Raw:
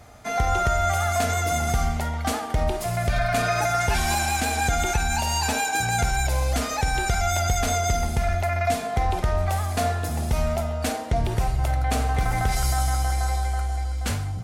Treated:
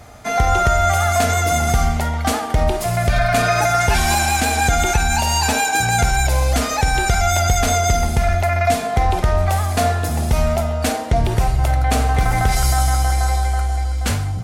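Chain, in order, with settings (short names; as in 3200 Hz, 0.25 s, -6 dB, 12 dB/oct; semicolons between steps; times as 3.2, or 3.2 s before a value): gain +6.5 dB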